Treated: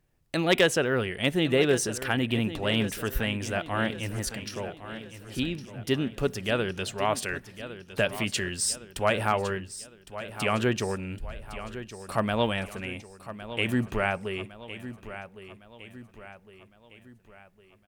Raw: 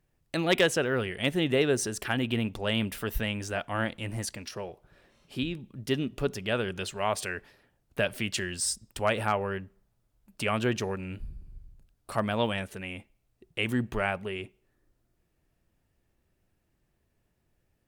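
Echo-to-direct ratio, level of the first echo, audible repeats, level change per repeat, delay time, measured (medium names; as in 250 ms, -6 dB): -12.0 dB, -13.0 dB, 4, -6.5 dB, 1109 ms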